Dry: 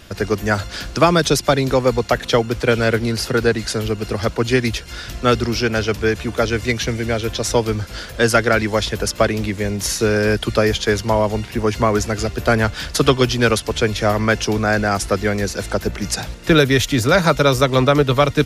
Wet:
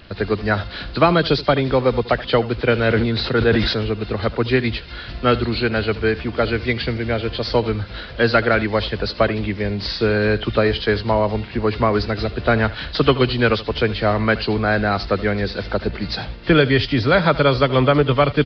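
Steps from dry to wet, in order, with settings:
hearing-aid frequency compression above 2,700 Hz 1.5 to 1
on a send: single-tap delay 77 ms −17.5 dB
on the sum: downsampling to 11,025 Hz
0:02.87–0:03.89: level that may fall only so fast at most 37 dB per second
level −1 dB

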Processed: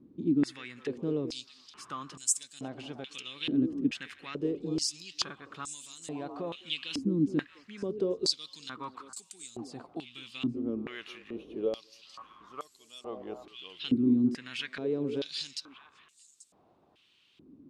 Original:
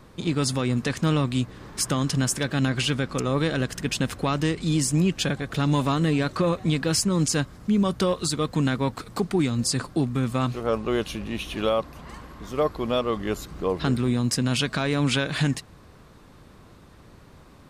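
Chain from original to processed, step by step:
flat-topped bell 1,000 Hz −9 dB 2.4 octaves
echo through a band-pass that steps 209 ms, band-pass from 370 Hz, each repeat 1.4 octaves, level −6 dB
band-pass on a step sequencer 2.3 Hz 280–7,700 Hz
level +4 dB

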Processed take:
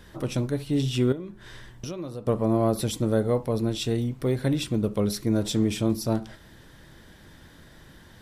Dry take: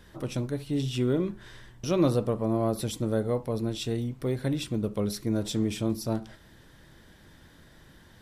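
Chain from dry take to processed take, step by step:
0:01.12–0:02.27: downward compressor 6 to 1, threshold −37 dBFS, peak gain reduction 17.5 dB
level +4 dB

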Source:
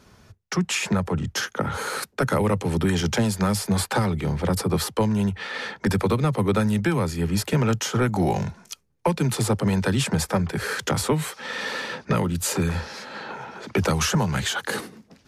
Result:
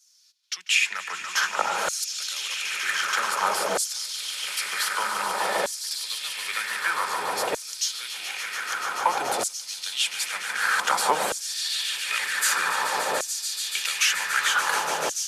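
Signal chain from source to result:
speech leveller within 4 dB 2 s
echo that builds up and dies away 144 ms, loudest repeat 8, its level −11 dB
auto-filter high-pass saw down 0.53 Hz 600–6,500 Hz
level −1 dB

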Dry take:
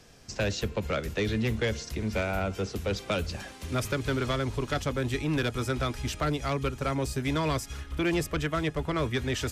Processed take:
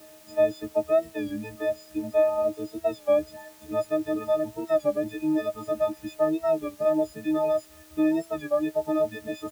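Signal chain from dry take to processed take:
every partial snapped to a pitch grid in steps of 6 semitones
in parallel at +0.5 dB: brickwall limiter −20 dBFS, peak gain reduction 7.5 dB
on the sum: reverb reduction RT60 1.7 s
pair of resonant band-passes 450 Hz, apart 0.79 octaves
bit-depth reduction 10 bits, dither triangular
double-tracking delay 16 ms −13 dB
wow of a warped record 33 1/3 rpm, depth 100 cents
level +5.5 dB

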